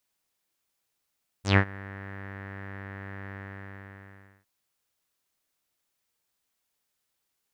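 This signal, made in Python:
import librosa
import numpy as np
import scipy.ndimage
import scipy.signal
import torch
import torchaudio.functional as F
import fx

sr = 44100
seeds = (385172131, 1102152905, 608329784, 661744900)

y = fx.sub_voice(sr, note=43, wave='saw', cutoff_hz=1800.0, q=6.2, env_oct=2.5, env_s=0.12, attack_ms=125.0, decay_s=0.08, sustain_db=-23.0, release_s=1.11, note_s=1.9, slope=12)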